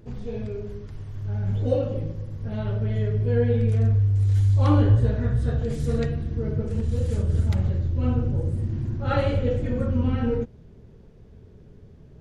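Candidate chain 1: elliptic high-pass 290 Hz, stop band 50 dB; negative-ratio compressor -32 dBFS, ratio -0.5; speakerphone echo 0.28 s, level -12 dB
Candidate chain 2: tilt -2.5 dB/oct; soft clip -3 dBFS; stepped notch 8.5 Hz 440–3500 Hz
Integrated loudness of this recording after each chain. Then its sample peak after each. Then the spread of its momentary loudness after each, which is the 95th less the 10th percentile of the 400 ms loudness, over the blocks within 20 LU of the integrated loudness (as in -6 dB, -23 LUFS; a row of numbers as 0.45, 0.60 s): -35.0, -17.5 LUFS; -19.0, -4.0 dBFS; 11, 14 LU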